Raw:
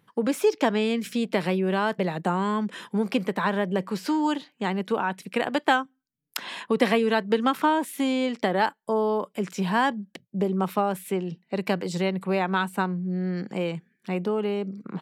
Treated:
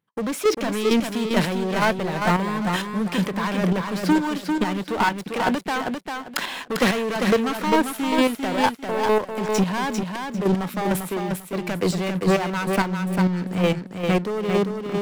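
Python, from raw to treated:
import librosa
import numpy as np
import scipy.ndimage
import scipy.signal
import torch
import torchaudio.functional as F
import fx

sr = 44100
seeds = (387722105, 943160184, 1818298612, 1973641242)

y = fx.leveller(x, sr, passes=5)
y = fx.chopper(y, sr, hz=2.2, depth_pct=60, duty_pct=20)
y = fx.echo_feedback(y, sr, ms=397, feedback_pct=24, wet_db=-5.0)
y = y * 10.0 ** (-6.0 / 20.0)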